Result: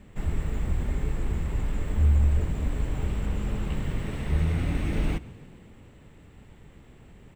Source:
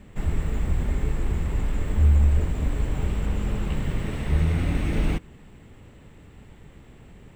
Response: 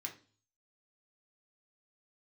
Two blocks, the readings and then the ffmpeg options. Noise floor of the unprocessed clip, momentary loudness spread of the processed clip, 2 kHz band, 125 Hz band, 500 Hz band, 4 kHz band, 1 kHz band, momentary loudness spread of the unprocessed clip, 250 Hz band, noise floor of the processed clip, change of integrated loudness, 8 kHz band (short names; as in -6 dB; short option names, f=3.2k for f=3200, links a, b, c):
-49 dBFS, 9 LU, -3.0 dB, -3.0 dB, -3.0 dB, -3.0 dB, -3.0 dB, 8 LU, -3.0 dB, -51 dBFS, -3.0 dB, -3.0 dB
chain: -filter_complex "[0:a]asplit=6[a][b][c][d][e][f];[b]adelay=139,afreqshift=40,volume=-21.5dB[g];[c]adelay=278,afreqshift=80,volume=-25.2dB[h];[d]adelay=417,afreqshift=120,volume=-29dB[i];[e]adelay=556,afreqshift=160,volume=-32.7dB[j];[f]adelay=695,afreqshift=200,volume=-36.5dB[k];[a][g][h][i][j][k]amix=inputs=6:normalize=0,volume=-3dB"